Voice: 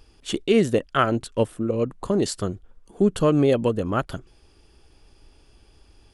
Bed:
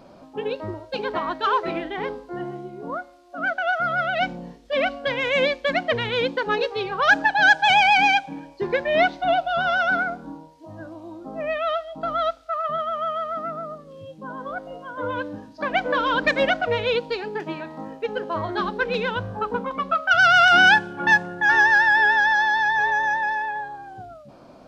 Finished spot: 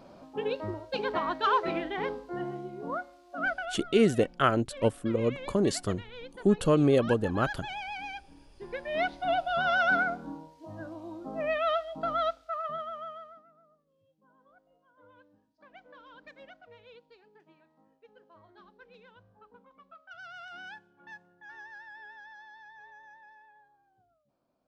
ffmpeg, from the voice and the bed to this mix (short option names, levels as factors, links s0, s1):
-filter_complex "[0:a]adelay=3450,volume=0.631[s0];[1:a]volume=5.31,afade=t=out:st=3.42:d=0.33:silence=0.125893,afade=t=in:st=8.51:d=1.4:silence=0.11885,afade=t=out:st=11.9:d=1.54:silence=0.0421697[s1];[s0][s1]amix=inputs=2:normalize=0"